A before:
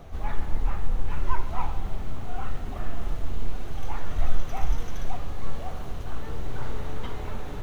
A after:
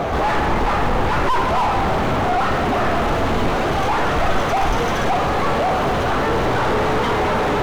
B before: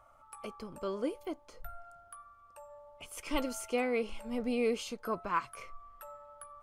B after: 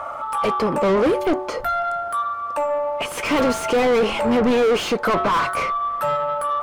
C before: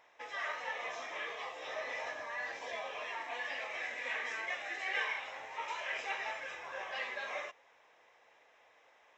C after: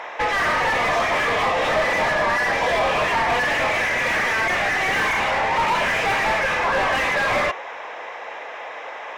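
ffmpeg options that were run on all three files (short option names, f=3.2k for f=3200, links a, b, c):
-filter_complex "[0:a]bandreject=f=372:t=h:w=4,bandreject=f=744:t=h:w=4,bandreject=f=1.116k:t=h:w=4,bandreject=f=1.488k:t=h:w=4,bandreject=f=1.86k:t=h:w=4,asplit=2[a][b];[b]highpass=f=720:p=1,volume=45dB,asoftclip=type=tanh:threshold=-7dB[c];[a][c]amix=inputs=2:normalize=0,lowpass=f=1.1k:p=1,volume=-6dB,volume=-1.5dB"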